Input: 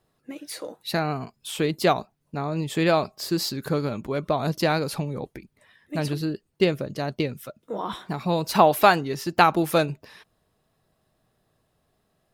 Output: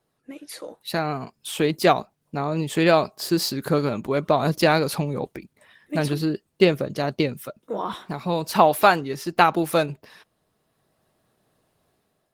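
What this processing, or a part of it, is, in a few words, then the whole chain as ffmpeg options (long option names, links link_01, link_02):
video call: -af "highpass=frequency=130:poles=1,dynaudnorm=framelen=740:gausssize=3:maxgain=7dB,volume=-1dB" -ar 48000 -c:a libopus -b:a 20k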